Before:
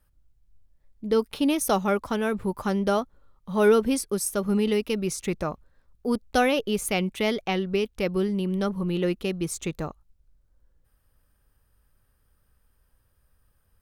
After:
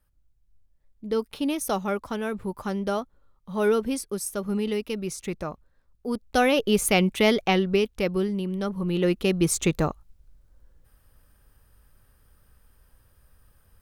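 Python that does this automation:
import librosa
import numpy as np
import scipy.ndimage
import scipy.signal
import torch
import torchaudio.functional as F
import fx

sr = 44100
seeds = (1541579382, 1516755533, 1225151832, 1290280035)

y = fx.gain(x, sr, db=fx.line((6.12, -3.5), (6.74, 5.0), (7.49, 5.0), (8.58, -3.0), (9.49, 7.5)))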